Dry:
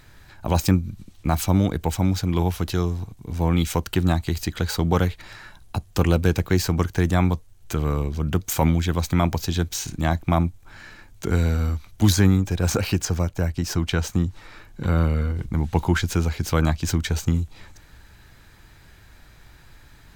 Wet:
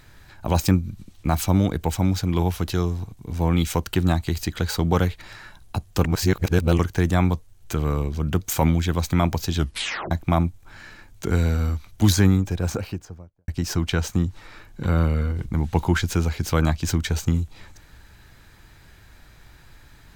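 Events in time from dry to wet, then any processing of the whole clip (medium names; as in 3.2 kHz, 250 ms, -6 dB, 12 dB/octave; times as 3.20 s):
6.05–6.79 s: reverse
9.56 s: tape stop 0.55 s
12.22–13.48 s: studio fade out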